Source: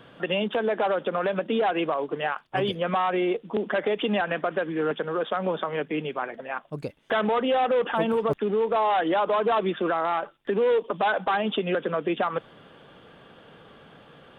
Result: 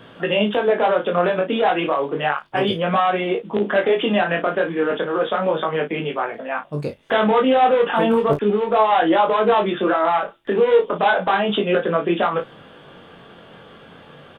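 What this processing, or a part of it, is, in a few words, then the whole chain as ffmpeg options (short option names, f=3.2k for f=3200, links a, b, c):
double-tracked vocal: -filter_complex "[0:a]asplit=2[a][b];[b]adelay=34,volume=-8.5dB[c];[a][c]amix=inputs=2:normalize=0,flanger=delay=18:depth=5.4:speed=0.33,volume=9dB"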